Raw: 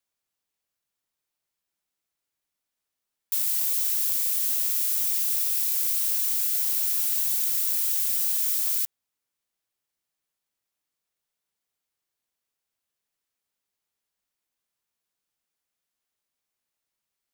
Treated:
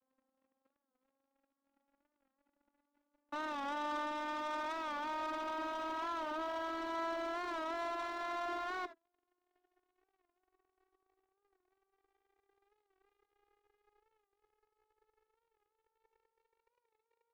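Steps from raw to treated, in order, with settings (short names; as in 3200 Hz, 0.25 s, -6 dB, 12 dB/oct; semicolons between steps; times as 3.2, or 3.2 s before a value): vocoder on a gliding note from C4, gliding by +10 st; LPF 1200 Hz 24 dB/oct; sample leveller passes 3; non-linear reverb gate 90 ms rising, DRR 12 dB; record warp 45 rpm, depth 100 cents; gain +8 dB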